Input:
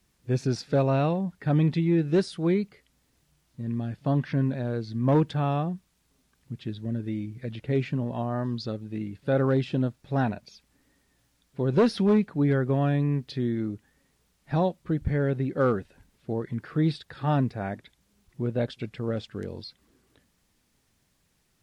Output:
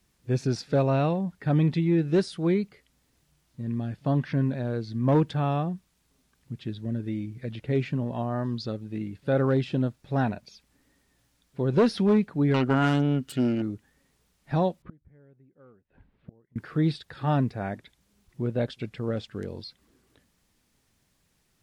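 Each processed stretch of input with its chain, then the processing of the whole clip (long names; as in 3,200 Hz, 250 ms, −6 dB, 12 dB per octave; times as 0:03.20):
0:12.54–0:13.62: phase distortion by the signal itself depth 0.48 ms + parametric band 260 Hz +8.5 dB 0.27 octaves + hollow resonant body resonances 1,400/2,900 Hz, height 14 dB, ringing for 25 ms
0:14.82–0:16.56: high-frequency loss of the air 460 metres + gate with flip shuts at −30 dBFS, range −30 dB
whole clip: no processing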